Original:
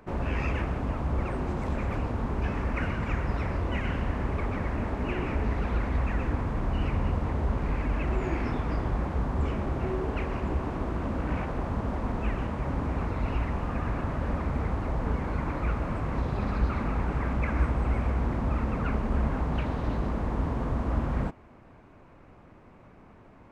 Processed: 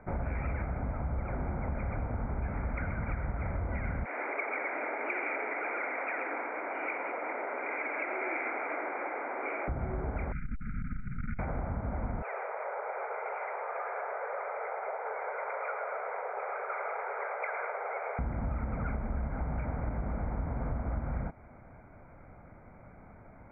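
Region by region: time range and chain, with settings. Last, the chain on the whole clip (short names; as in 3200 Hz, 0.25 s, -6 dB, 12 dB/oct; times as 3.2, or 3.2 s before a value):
4.05–9.68 steep high-pass 310 Hz 48 dB/oct + bell 2500 Hz +11.5 dB 0.97 oct + lo-fi delay 87 ms, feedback 55%, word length 9-bit, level -11 dB
10.32–11.39 brick-wall FIR band-stop 350–1300 Hz + frequency shift -75 Hz + core saturation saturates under 76 Hz
12.22–18.19 brick-wall FIR high-pass 390 Hz + lo-fi delay 0.109 s, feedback 55%, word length 10-bit, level -7 dB
whole clip: Chebyshev low-pass 2400 Hz, order 8; comb 1.4 ms, depth 42%; compressor, threshold -30 dBFS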